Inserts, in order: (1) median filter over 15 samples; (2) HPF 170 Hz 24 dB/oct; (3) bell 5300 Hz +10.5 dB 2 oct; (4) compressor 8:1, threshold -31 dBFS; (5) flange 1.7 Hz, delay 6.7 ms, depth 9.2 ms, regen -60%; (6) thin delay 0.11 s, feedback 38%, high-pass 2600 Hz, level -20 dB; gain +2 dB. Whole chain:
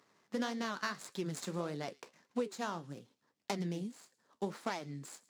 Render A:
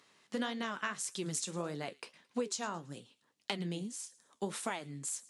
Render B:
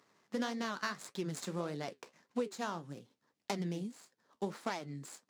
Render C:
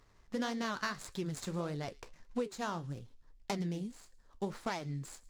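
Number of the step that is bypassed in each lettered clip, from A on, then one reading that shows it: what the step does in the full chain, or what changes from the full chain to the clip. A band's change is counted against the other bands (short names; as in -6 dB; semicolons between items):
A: 1, 8 kHz band +10.5 dB; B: 6, echo-to-direct -26.5 dB to none; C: 2, 125 Hz band +3.0 dB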